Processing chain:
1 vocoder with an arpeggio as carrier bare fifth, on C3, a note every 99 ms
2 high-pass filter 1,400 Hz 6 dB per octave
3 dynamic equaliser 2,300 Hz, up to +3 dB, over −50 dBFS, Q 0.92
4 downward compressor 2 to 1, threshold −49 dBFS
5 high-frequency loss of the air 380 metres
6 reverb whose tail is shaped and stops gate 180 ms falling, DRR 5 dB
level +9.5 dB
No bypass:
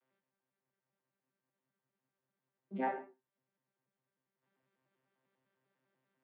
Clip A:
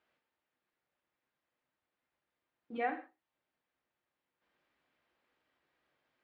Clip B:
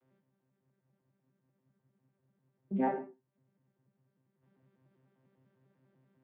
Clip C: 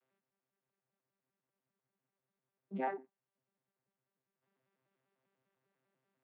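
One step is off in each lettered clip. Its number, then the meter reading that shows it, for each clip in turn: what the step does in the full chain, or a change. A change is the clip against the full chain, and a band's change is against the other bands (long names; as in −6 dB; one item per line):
1, 2 kHz band +4.5 dB
2, 2 kHz band −9.0 dB
6, 125 Hz band +3.0 dB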